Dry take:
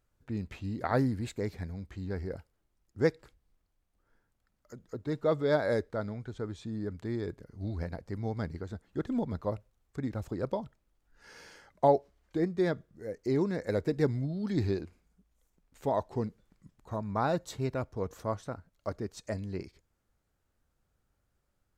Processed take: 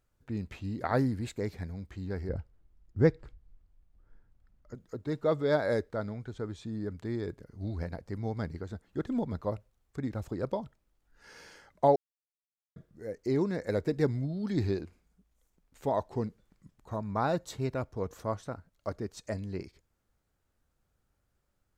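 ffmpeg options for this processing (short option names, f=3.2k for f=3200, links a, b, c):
-filter_complex "[0:a]asettb=1/sr,asplit=3[a][b][c];[a]atrim=end=2.294[d];[b]atrim=start=2.29:end=4.75,asetpts=PTS-STARTPTS,afade=t=in:d=0.004:c=qsin,afade=t=out:st=2.456:d=0.004:c=qsin,aemphasis=mode=reproduction:type=bsi[e];[c]atrim=start=4.746[f];[d][e]acrossfade=d=0.004:c1=hsin:c2=qsin[g];[g][f]acrossfade=d=0.004:c1=qsin:c2=hsin,asplit=3[h][i][j];[h]atrim=end=11.96,asetpts=PTS-STARTPTS,afade=t=out:st=11.956:d=0.004:c=hsin[k];[i]atrim=start=11.96:end=12.76,asetpts=PTS-STARTPTS,volume=0[l];[j]atrim=start=12.76,asetpts=PTS-STARTPTS,afade=t=in:d=0.004:c=hsin[m];[k][l][m]concat=n=3:v=0:a=1"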